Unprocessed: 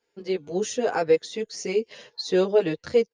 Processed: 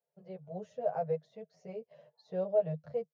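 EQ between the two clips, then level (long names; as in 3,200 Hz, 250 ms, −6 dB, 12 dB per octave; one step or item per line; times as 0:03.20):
pair of resonant band-passes 310 Hz, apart 2 octaves
0.0 dB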